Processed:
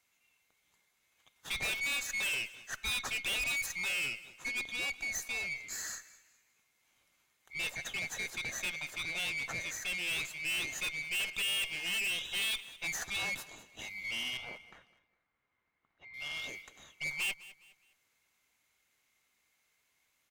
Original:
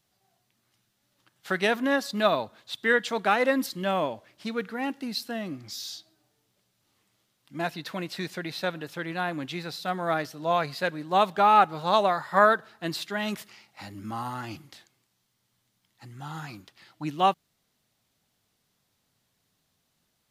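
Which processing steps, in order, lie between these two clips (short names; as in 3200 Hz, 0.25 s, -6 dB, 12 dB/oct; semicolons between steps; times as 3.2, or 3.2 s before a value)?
band-swap scrambler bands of 2000 Hz; 14.37–16.14 LPF 1700 Hz 12 dB/oct; tube stage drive 32 dB, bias 0.5; feedback echo 0.206 s, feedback 34%, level -18.5 dB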